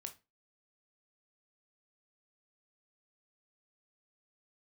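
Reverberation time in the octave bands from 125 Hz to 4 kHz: 0.35 s, 0.30 s, 0.25 s, 0.25 s, 0.25 s, 0.25 s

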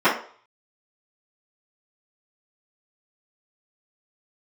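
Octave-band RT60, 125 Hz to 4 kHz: 0.30 s, 0.35 s, 0.45 s, 0.50 s, 0.40 s, 0.45 s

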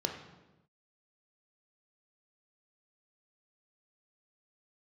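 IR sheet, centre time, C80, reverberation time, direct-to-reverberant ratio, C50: 28 ms, 9.0 dB, no single decay rate, 2.5 dB, 6.5 dB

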